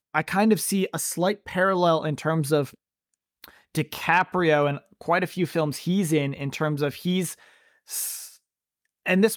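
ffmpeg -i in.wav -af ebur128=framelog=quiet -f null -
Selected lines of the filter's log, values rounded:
Integrated loudness:
  I:         -24.6 LUFS
  Threshold: -35.1 LUFS
Loudness range:
  LRA:         3.7 LU
  Threshold: -45.5 LUFS
  LRA low:   -27.9 LUFS
  LRA high:  -24.2 LUFS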